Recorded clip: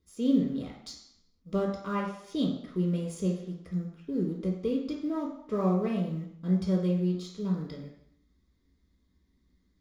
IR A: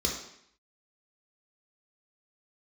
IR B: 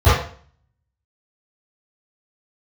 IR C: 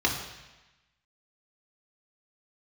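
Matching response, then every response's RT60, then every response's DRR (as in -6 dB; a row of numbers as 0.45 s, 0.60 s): A; 0.70 s, 0.45 s, 1.1 s; -1.0 dB, -18.0 dB, -0.5 dB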